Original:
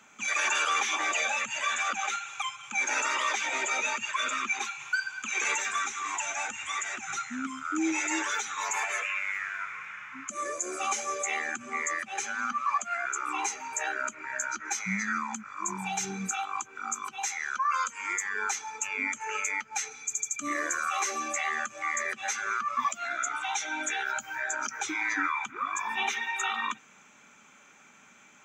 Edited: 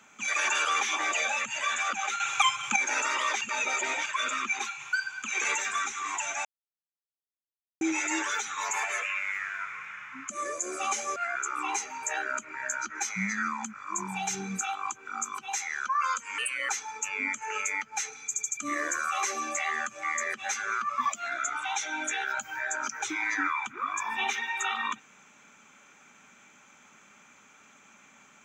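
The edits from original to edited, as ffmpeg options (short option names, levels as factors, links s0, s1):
-filter_complex "[0:a]asplit=10[s0][s1][s2][s3][s4][s5][s6][s7][s8][s9];[s0]atrim=end=2.202[s10];[s1]atrim=start=2.198:end=2.762,asetpts=PTS-STARTPTS,volume=3.16[s11];[s2]atrim=start=2.758:end=3.412[s12];[s3]atrim=start=3.408:end=4.062,asetpts=PTS-STARTPTS,areverse[s13];[s4]atrim=start=4.058:end=6.45,asetpts=PTS-STARTPTS,afade=t=out:st=2.388:d=0.004:c=hsin[s14];[s5]atrim=start=6.45:end=7.81,asetpts=PTS-STARTPTS,volume=0[s15];[s6]atrim=start=7.81:end=11.162,asetpts=PTS-STARTPTS,afade=t=in:d=0.004:c=hsin[s16];[s7]atrim=start=12.858:end=18.084[s17];[s8]atrim=start=18.08:end=18.48,asetpts=PTS-STARTPTS,asetrate=56889,aresample=44100,atrim=end_sample=13674,asetpts=PTS-STARTPTS[s18];[s9]atrim=start=18.476[s19];[s10][s11]acrossfade=d=0.004:c1=hsin:c2=hsin[s20];[s20][s12]acrossfade=d=0.004:c1=hsin:c2=hsin[s21];[s21][s13]acrossfade=d=0.004:c1=hsin:c2=hsin[s22];[s14][s15][s16]concat=n=3:v=0:a=1[s23];[s22][s23]acrossfade=d=0.004:c1=hsin:c2=hsin[s24];[s24][s17]acrossfade=d=0.004:c1=hsin:c2=hsin[s25];[s25][s18]acrossfade=d=0.004:c1=hsin:c2=hsin[s26];[s26][s19]acrossfade=d=0.004:c1=hsin:c2=hsin"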